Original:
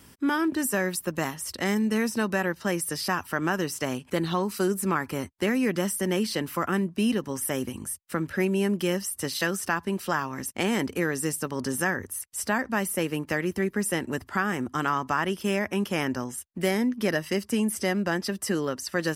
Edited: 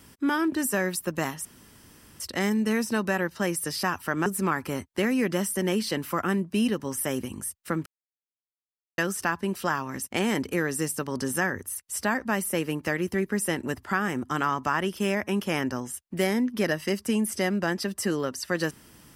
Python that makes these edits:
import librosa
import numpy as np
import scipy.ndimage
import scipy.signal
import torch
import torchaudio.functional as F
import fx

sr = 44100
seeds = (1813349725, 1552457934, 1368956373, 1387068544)

y = fx.edit(x, sr, fx.insert_room_tone(at_s=1.45, length_s=0.75),
    fx.cut(start_s=3.51, length_s=1.19),
    fx.silence(start_s=8.3, length_s=1.12), tone=tone)